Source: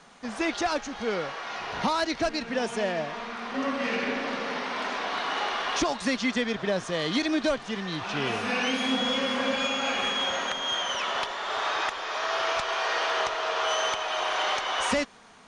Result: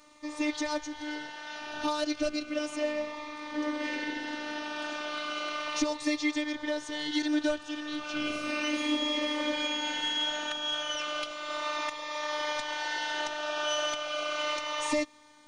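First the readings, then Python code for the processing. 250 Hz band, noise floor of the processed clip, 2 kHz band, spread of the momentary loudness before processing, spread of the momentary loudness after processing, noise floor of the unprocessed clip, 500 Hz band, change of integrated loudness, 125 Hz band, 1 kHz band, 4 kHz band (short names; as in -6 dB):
-1.5 dB, -46 dBFS, -4.5 dB, 5 LU, 7 LU, -41 dBFS, -4.5 dB, -4.0 dB, under -15 dB, -7.0 dB, -3.0 dB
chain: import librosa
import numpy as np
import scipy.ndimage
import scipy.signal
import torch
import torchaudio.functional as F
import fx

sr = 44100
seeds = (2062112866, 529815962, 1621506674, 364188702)

y = fx.robotise(x, sr, hz=301.0)
y = fx.notch_cascade(y, sr, direction='falling', hz=0.34)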